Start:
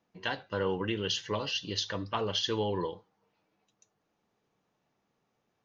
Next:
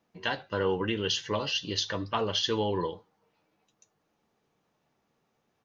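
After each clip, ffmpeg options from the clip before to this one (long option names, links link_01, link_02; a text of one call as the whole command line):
ffmpeg -i in.wav -filter_complex "[0:a]asplit=2[link_01][link_02];[link_02]adelay=13,volume=-12.5dB[link_03];[link_01][link_03]amix=inputs=2:normalize=0,volume=2.5dB" out.wav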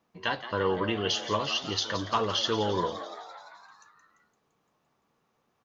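ffmpeg -i in.wav -filter_complex "[0:a]equalizer=frequency=1100:width=3.9:gain=6.5,asplit=2[link_01][link_02];[link_02]asplit=8[link_03][link_04][link_05][link_06][link_07][link_08][link_09][link_10];[link_03]adelay=171,afreqshift=120,volume=-12dB[link_11];[link_04]adelay=342,afreqshift=240,volume=-15.9dB[link_12];[link_05]adelay=513,afreqshift=360,volume=-19.8dB[link_13];[link_06]adelay=684,afreqshift=480,volume=-23.6dB[link_14];[link_07]adelay=855,afreqshift=600,volume=-27.5dB[link_15];[link_08]adelay=1026,afreqshift=720,volume=-31.4dB[link_16];[link_09]adelay=1197,afreqshift=840,volume=-35.3dB[link_17];[link_10]adelay=1368,afreqshift=960,volume=-39.1dB[link_18];[link_11][link_12][link_13][link_14][link_15][link_16][link_17][link_18]amix=inputs=8:normalize=0[link_19];[link_01][link_19]amix=inputs=2:normalize=0" out.wav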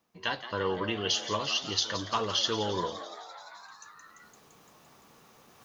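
ffmpeg -i in.wav -af "highshelf=frequency=4000:gain=9.5,areverse,acompressor=mode=upward:threshold=-38dB:ratio=2.5,areverse,volume=-3.5dB" out.wav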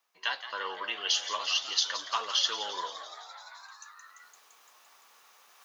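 ffmpeg -i in.wav -af "highpass=990,volume=1.5dB" out.wav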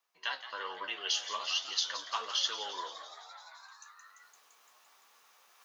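ffmpeg -i in.wav -af "flanger=delay=10:depth=5.4:regen=56:speed=1.2:shape=triangular" out.wav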